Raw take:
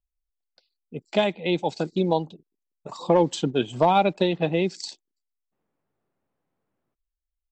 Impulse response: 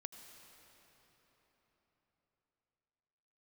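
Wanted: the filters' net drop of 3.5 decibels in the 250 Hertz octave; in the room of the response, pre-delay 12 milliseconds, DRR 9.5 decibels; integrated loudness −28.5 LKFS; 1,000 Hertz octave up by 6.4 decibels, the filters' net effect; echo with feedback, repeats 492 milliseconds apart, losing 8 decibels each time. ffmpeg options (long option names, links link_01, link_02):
-filter_complex "[0:a]equalizer=frequency=250:width_type=o:gain=-7,equalizer=frequency=1000:width_type=o:gain=9,aecho=1:1:492|984|1476|1968|2460:0.398|0.159|0.0637|0.0255|0.0102,asplit=2[link_01][link_02];[1:a]atrim=start_sample=2205,adelay=12[link_03];[link_02][link_03]afir=irnorm=-1:irlink=0,volume=-5dB[link_04];[link_01][link_04]amix=inputs=2:normalize=0,volume=-6.5dB"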